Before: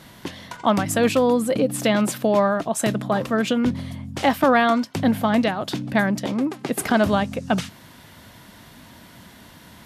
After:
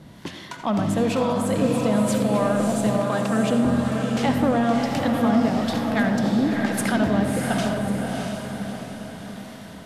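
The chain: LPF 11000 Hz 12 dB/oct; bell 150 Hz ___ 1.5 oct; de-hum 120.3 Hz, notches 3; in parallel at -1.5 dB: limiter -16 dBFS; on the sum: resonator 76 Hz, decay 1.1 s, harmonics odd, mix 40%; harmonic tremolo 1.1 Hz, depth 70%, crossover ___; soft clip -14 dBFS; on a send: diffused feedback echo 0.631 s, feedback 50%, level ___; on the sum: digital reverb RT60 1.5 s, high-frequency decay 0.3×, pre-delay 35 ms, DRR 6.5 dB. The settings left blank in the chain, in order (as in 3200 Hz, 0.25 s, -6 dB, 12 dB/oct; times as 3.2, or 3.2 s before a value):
+4.5 dB, 720 Hz, -3 dB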